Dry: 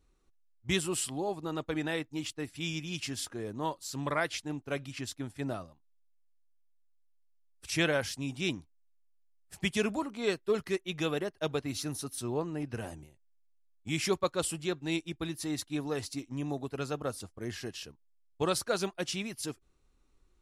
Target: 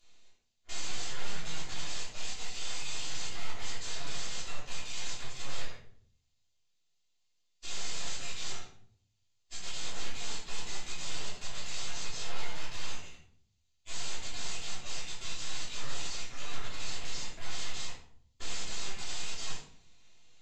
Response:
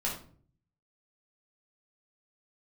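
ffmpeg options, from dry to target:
-filter_complex "[0:a]aeval=exprs='(tanh(22.4*val(0)+0.4)-tanh(0.4))/22.4':c=same,highpass=1200,aresample=16000,aeval=exprs='0.0119*sin(PI/2*4.47*val(0)/0.0119)':c=same,aresample=44100,bandreject=f=5600:w=16,acrossover=split=2400[s0][s1];[s0]aeval=exprs='abs(val(0))':c=same[s2];[s2][s1]amix=inputs=2:normalize=0[s3];[1:a]atrim=start_sample=2205,asetrate=32193,aresample=44100[s4];[s3][s4]afir=irnorm=-1:irlink=0,volume=0.75"

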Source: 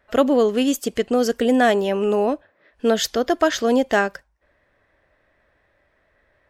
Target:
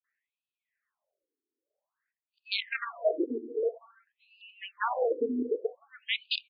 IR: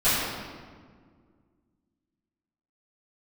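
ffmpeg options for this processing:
-filter_complex "[0:a]areverse,aeval=exprs='(mod(3.16*val(0)+1,2)-1)/3.16':c=same,asplit=2[s0][s1];[s1]equalizer=f=5400:w=1.2:g=-8[s2];[1:a]atrim=start_sample=2205,afade=t=out:st=0.44:d=0.01,atrim=end_sample=19845,lowpass=2700[s3];[s2][s3]afir=irnorm=-1:irlink=0,volume=0.0473[s4];[s0][s4]amix=inputs=2:normalize=0,afftdn=nr=14:nf=-30,lowshelf=f=110:g=-8.5,aresample=32000,aresample=44100,afftfilt=real='re*between(b*sr/1024,320*pow(3500/320,0.5+0.5*sin(2*PI*0.51*pts/sr))/1.41,320*pow(3500/320,0.5+0.5*sin(2*PI*0.51*pts/sr))*1.41)':imag='im*between(b*sr/1024,320*pow(3500/320,0.5+0.5*sin(2*PI*0.51*pts/sr))/1.41,320*pow(3500/320,0.5+0.5*sin(2*PI*0.51*pts/sr))*1.41)':win_size=1024:overlap=0.75,volume=0.631"

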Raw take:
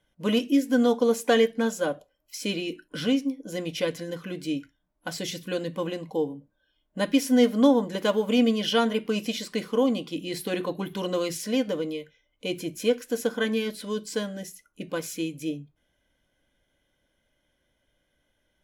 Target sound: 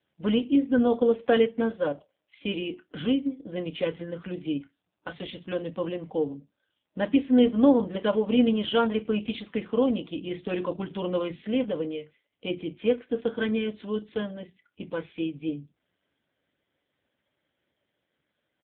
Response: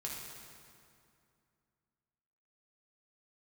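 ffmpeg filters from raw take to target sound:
-filter_complex "[0:a]asettb=1/sr,asplit=3[s0][s1][s2];[s0]atrim=end=5.084[s3];[s1]atrim=start=5.08:end=5.88,asetpts=PTS-STARTPTS,afade=t=in:d=0.004:c=qsin,afade=t=out:st=0.796:d=0.004:c=qsin,lowshelf=f=75:g=-11.5[s4];[s2]atrim=start=5.876[s5];[s3][s4]acrossfade=d=0.004:c1=hsin:c2=qsin[s6];[s6][s5]acrossfade=d=0.004:c1=qsin:c2=hsin,asplit=2[s7][s8];[s8]adelay=28,volume=0.224[s9];[s7][s9]amix=inputs=2:normalize=0" -ar 8000 -c:a libopencore_amrnb -b:a 5900

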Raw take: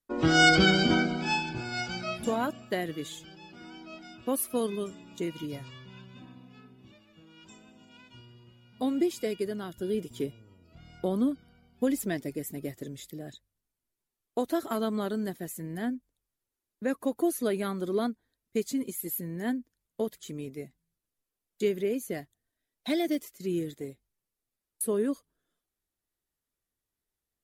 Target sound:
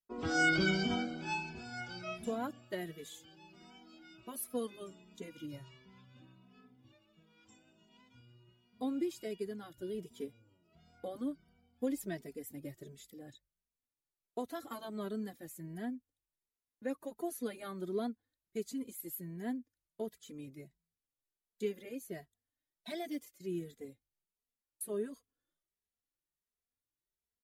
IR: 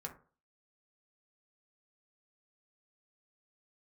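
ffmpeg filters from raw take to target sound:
-filter_complex "[0:a]asettb=1/sr,asplit=3[s0][s1][s2];[s0]atrim=end=2.784[s3];[s1]atrim=start=2.78:end=4.2,asetpts=PTS-STARTPTS,afade=t=in:d=0.004:c=qsin,afade=t=out:st=1.416:d=0.004:c=qsin,highshelf=f=9300:g=7.5[s4];[s2]atrim=start=4.196[s5];[s3][s4]acrossfade=d=0.004:c1=hsin:c2=qsin[s6];[s6][s5]acrossfade=d=0.004:c1=qsin:c2=hsin,asettb=1/sr,asplit=3[s7][s8][s9];[s7]atrim=end=10.084[s10];[s8]atrim=start=10.08:end=11.15,asetpts=PTS-STARTPTS,afade=t=in:d=0.004:c=qsin,afade=t=out:st=1.066:d=0.004:c=qsin,highpass=f=130:p=1[s11];[s9]atrim=start=11.146[s12];[s10][s11]acrossfade=d=0.004:c1=hsin:c2=qsin[s13];[s13][s12]acrossfade=d=0.004:c1=qsin:c2=hsin,asplit=2[s14][s15];[s15]adelay=2.7,afreqshift=1.4[s16];[s14][s16]amix=inputs=2:normalize=1,volume=0.447"

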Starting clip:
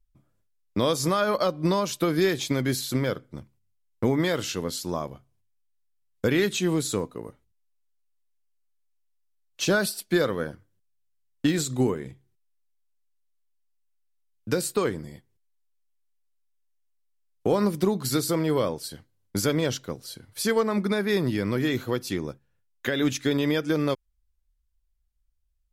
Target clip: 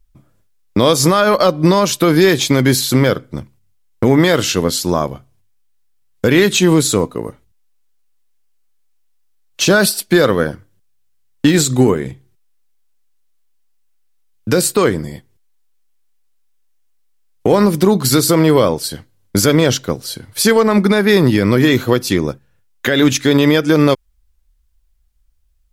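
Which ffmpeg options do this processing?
-af "aeval=exprs='0.299*(cos(1*acos(clip(val(0)/0.299,-1,1)))-cos(1*PI/2))+0.00668*(cos(7*acos(clip(val(0)/0.299,-1,1)))-cos(7*PI/2))':c=same,alimiter=level_in=6.31:limit=0.891:release=50:level=0:latency=1,volume=0.891"

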